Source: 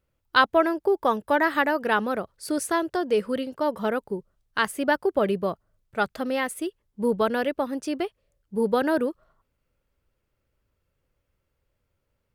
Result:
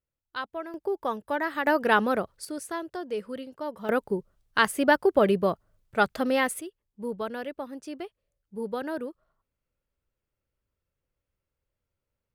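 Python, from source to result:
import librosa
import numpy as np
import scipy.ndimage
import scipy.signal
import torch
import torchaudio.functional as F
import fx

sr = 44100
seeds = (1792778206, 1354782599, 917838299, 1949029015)

y = fx.gain(x, sr, db=fx.steps((0.0, -15.5), (0.74, -7.0), (1.67, 1.5), (2.45, -9.0), (3.89, 2.0), (6.61, -9.5)))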